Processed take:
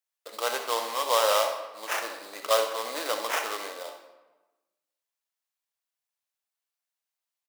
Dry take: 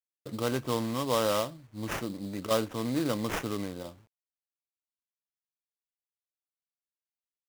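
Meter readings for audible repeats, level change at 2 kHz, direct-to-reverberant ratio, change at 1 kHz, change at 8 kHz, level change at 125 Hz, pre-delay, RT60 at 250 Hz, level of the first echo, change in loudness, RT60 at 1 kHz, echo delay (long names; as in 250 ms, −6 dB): 1, +7.0 dB, 5.0 dB, +7.0 dB, +7.0 dB, below −35 dB, 35 ms, 1.4 s, −11.5 dB, +3.5 dB, 1.1 s, 66 ms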